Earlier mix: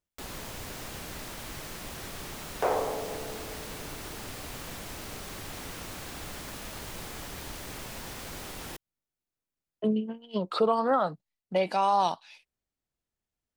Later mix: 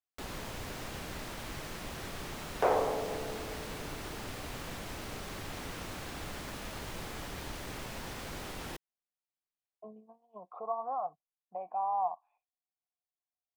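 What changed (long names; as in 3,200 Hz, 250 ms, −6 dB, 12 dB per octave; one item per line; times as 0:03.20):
speech: add formant resonators in series a
master: add high-shelf EQ 5,500 Hz −7.5 dB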